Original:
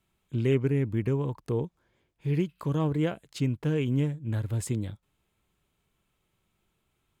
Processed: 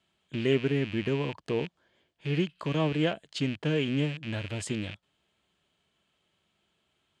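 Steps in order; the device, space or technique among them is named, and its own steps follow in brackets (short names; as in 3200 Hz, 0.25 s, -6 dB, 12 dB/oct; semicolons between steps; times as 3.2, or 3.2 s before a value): car door speaker with a rattle (rattling part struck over -40 dBFS, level -33 dBFS; speaker cabinet 94–8700 Hz, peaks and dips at 120 Hz -8 dB, 640 Hz +6 dB, 1700 Hz +5 dB, 3100 Hz +9 dB, 4400 Hz +5 dB)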